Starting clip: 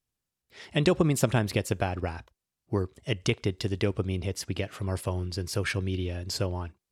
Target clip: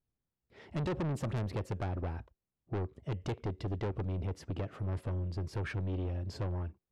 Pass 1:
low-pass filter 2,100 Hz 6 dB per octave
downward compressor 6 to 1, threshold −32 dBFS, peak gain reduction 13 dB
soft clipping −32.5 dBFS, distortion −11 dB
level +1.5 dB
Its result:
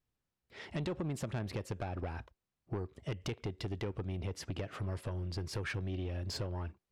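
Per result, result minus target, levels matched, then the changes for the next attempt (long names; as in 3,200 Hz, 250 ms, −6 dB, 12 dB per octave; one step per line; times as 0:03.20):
downward compressor: peak gain reduction +13 dB; 2,000 Hz band +4.0 dB
remove: downward compressor 6 to 1, threshold −32 dBFS, peak gain reduction 13 dB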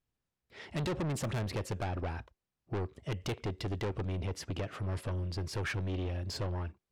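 2,000 Hz band +4.5 dB
change: low-pass filter 550 Hz 6 dB per octave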